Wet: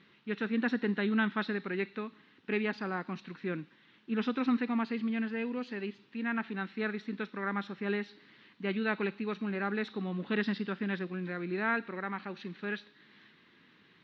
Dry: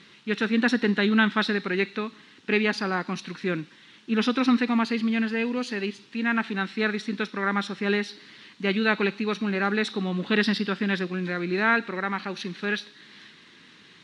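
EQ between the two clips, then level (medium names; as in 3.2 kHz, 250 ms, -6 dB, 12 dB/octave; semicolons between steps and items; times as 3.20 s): distance through air 160 m; treble shelf 6.2 kHz -11 dB; -7.5 dB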